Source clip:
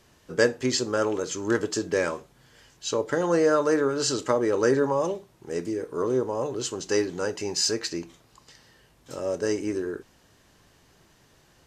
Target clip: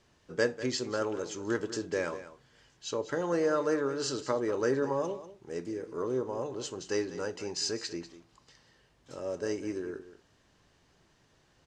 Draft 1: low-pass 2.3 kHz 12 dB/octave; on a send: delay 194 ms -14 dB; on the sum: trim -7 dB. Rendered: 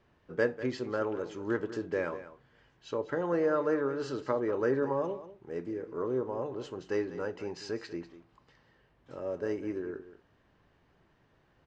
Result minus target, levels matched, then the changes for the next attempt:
8 kHz band -16.5 dB
change: low-pass 7.1 kHz 12 dB/octave

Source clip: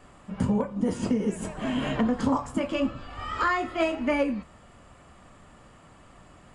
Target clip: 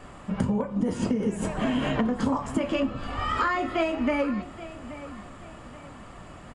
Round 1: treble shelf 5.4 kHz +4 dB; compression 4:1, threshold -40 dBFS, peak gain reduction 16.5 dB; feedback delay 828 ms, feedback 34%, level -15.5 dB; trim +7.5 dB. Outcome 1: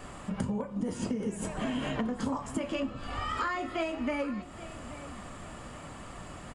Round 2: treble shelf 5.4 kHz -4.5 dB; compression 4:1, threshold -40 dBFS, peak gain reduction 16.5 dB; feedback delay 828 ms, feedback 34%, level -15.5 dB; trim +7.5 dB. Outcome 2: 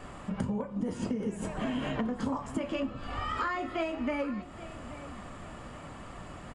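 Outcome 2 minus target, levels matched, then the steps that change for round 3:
compression: peak gain reduction +6.5 dB
change: compression 4:1, threshold -31 dBFS, peak gain reduction 9.5 dB

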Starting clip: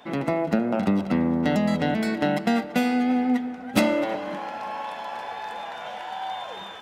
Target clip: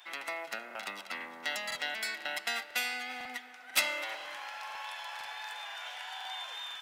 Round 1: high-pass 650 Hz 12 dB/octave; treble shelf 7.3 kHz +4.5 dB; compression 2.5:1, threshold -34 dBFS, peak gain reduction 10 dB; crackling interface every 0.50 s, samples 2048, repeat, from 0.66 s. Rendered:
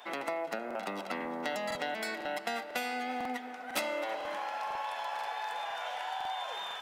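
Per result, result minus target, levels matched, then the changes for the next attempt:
compression: peak gain reduction +10 dB; 500 Hz band +9.0 dB
remove: compression 2.5:1, threshold -34 dBFS, peak gain reduction 10 dB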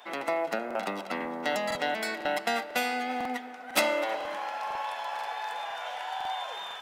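500 Hz band +9.5 dB
change: high-pass 1.7 kHz 12 dB/octave

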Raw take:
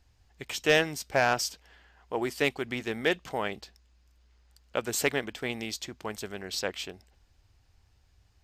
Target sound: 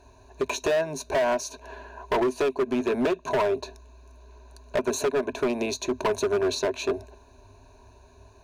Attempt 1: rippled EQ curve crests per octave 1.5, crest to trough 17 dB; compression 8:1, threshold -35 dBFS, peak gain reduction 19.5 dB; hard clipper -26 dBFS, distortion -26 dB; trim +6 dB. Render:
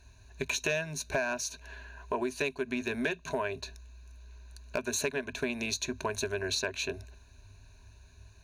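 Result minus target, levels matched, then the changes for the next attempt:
500 Hz band -3.5 dB
add after compression: high-order bell 540 Hz +14 dB 2.4 oct

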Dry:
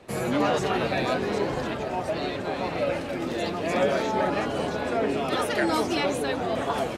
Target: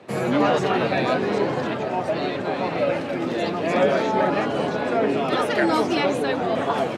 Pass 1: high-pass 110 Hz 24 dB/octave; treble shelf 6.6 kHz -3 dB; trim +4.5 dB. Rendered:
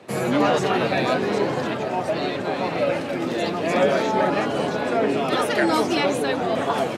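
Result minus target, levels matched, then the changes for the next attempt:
8 kHz band +5.0 dB
change: treble shelf 6.6 kHz -12.5 dB

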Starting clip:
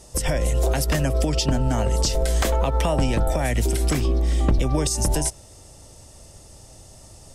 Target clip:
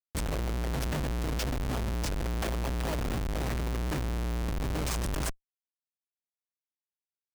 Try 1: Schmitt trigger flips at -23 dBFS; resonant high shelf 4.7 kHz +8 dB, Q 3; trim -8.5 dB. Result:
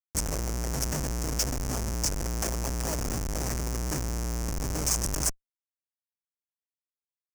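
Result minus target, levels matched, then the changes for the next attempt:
8 kHz band +9.5 dB
remove: resonant high shelf 4.7 kHz +8 dB, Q 3

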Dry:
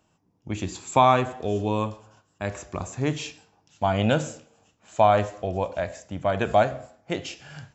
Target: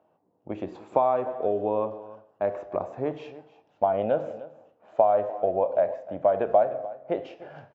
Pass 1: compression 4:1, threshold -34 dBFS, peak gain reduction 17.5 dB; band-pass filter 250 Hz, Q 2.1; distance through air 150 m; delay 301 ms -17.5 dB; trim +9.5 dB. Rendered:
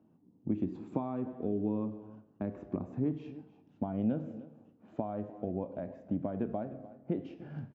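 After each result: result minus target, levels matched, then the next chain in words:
250 Hz band +14.0 dB; compression: peak gain reduction +7 dB
compression 4:1, threshold -34 dBFS, peak gain reduction 17.5 dB; band-pass filter 590 Hz, Q 2.1; distance through air 150 m; delay 301 ms -17.5 dB; trim +9.5 dB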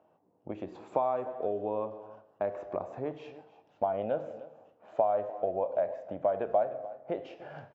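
compression: peak gain reduction +7 dB
compression 4:1, threshold -25 dBFS, peak gain reduction 11 dB; band-pass filter 590 Hz, Q 2.1; distance through air 150 m; delay 301 ms -17.5 dB; trim +9.5 dB

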